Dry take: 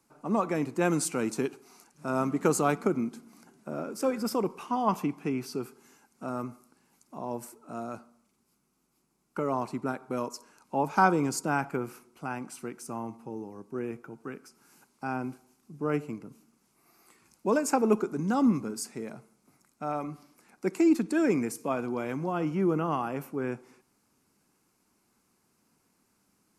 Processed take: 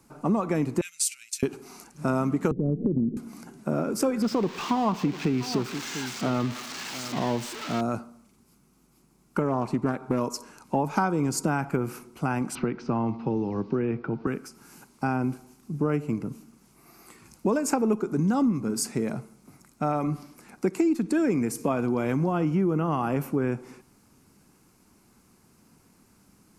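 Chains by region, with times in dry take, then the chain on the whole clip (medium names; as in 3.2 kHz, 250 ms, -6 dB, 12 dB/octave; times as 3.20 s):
0.81–1.43 s: inverse Chebyshev high-pass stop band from 940 Hz, stop band 50 dB + gate -47 dBFS, range -12 dB
2.51–3.17 s: steep low-pass 560 Hz 48 dB/octave + tilt EQ -3 dB/octave + compression 3:1, threshold -28 dBFS
4.22–7.81 s: zero-crossing glitches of -22 dBFS + distance through air 190 m + delay 696 ms -17 dB
9.41–10.21 s: treble shelf 5.5 kHz -5 dB + loudspeaker Doppler distortion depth 0.17 ms
12.55–14.27 s: steep low-pass 4.6 kHz + three bands compressed up and down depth 70%
whole clip: bass shelf 200 Hz +10 dB; compression 6:1, threshold -30 dBFS; trim +8.5 dB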